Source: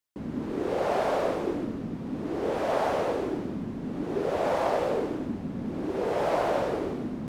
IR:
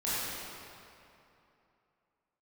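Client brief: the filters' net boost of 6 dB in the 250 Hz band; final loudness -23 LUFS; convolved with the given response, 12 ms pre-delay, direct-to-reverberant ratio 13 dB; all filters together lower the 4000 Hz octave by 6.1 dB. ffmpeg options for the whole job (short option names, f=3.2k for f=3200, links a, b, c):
-filter_complex "[0:a]equalizer=f=250:t=o:g=7.5,equalizer=f=4k:t=o:g=-8.5,asplit=2[a][b];[1:a]atrim=start_sample=2205,adelay=12[c];[b][c]afir=irnorm=-1:irlink=0,volume=-21.5dB[d];[a][d]amix=inputs=2:normalize=0,volume=3.5dB"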